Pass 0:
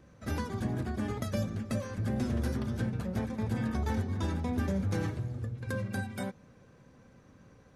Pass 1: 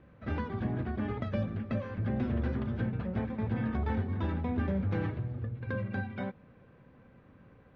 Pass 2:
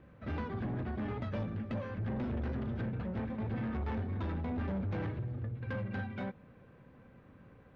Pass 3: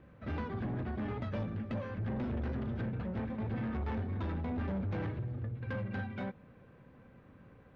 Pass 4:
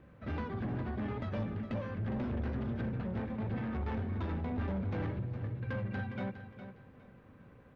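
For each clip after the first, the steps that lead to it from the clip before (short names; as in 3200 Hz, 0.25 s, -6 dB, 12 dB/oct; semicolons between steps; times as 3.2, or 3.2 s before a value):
LPF 3100 Hz 24 dB/oct
soft clip -31.5 dBFS, distortion -11 dB
nothing audible
feedback echo 0.41 s, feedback 26%, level -11 dB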